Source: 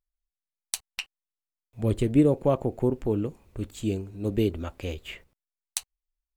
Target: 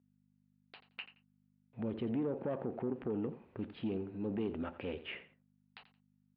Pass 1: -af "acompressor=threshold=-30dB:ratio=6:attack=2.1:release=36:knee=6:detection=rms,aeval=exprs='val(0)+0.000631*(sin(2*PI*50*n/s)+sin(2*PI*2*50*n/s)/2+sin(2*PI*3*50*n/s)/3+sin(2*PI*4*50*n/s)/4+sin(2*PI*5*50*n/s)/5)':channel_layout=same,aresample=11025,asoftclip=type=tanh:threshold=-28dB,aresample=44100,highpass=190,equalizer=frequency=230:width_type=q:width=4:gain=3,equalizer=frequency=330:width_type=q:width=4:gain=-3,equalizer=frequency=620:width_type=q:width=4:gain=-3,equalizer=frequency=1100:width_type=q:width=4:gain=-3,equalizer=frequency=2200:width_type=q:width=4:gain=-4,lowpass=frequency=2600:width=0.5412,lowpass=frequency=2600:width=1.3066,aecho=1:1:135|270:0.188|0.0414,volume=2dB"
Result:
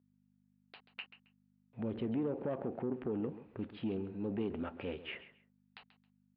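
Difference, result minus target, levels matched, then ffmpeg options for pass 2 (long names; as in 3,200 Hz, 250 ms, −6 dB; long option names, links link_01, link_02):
echo 49 ms late
-af "acompressor=threshold=-30dB:ratio=6:attack=2.1:release=36:knee=6:detection=rms,aeval=exprs='val(0)+0.000631*(sin(2*PI*50*n/s)+sin(2*PI*2*50*n/s)/2+sin(2*PI*3*50*n/s)/3+sin(2*PI*4*50*n/s)/4+sin(2*PI*5*50*n/s)/5)':channel_layout=same,aresample=11025,asoftclip=type=tanh:threshold=-28dB,aresample=44100,highpass=190,equalizer=frequency=230:width_type=q:width=4:gain=3,equalizer=frequency=330:width_type=q:width=4:gain=-3,equalizer=frequency=620:width_type=q:width=4:gain=-3,equalizer=frequency=1100:width_type=q:width=4:gain=-3,equalizer=frequency=2200:width_type=q:width=4:gain=-4,lowpass=frequency=2600:width=0.5412,lowpass=frequency=2600:width=1.3066,aecho=1:1:86|172:0.188|0.0414,volume=2dB"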